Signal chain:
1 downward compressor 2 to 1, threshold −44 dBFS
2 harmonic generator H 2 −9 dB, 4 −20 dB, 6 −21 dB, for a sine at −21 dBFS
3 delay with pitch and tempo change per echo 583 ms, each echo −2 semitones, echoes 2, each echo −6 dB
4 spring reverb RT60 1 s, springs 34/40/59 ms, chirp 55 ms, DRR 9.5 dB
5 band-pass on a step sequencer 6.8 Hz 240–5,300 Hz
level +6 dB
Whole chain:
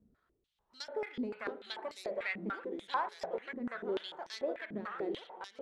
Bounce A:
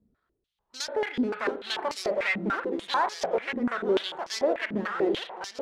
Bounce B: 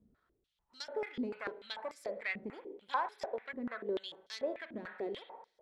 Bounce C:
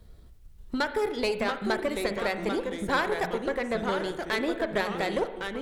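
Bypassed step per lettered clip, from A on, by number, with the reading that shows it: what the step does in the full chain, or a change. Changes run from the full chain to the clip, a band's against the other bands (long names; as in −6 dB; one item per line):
1, average gain reduction 12.0 dB
3, 125 Hz band −3.0 dB
5, 125 Hz band +3.0 dB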